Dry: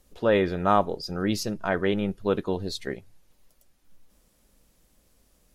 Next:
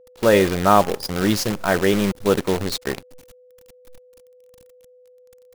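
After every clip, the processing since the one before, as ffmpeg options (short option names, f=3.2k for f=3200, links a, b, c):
-af "bandreject=f=270.3:t=h:w=4,bandreject=f=540.6:t=h:w=4,bandreject=f=810.9:t=h:w=4,bandreject=f=1.0812k:t=h:w=4,acrusher=bits=6:dc=4:mix=0:aa=0.000001,aeval=exprs='val(0)+0.00178*sin(2*PI*500*n/s)':c=same,volume=6.5dB"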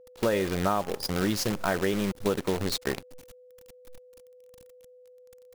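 -af "acompressor=threshold=-20dB:ratio=6,volume=-2.5dB"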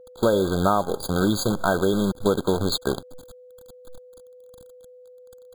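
-af "afftfilt=real='re*eq(mod(floor(b*sr/1024/1600),2),0)':imag='im*eq(mod(floor(b*sr/1024/1600),2),0)':win_size=1024:overlap=0.75,volume=6dB"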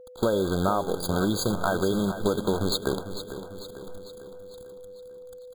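-filter_complex "[0:a]acompressor=threshold=-23dB:ratio=2,asplit=2[a][b];[b]aecho=0:1:448|896|1344|1792|2240|2688:0.266|0.144|0.0776|0.0419|0.0226|0.0122[c];[a][c]amix=inputs=2:normalize=0"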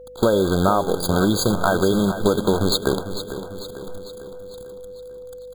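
-af "aeval=exprs='val(0)+0.000891*(sin(2*PI*50*n/s)+sin(2*PI*2*50*n/s)/2+sin(2*PI*3*50*n/s)/3+sin(2*PI*4*50*n/s)/4+sin(2*PI*5*50*n/s)/5)':c=same,volume=6.5dB"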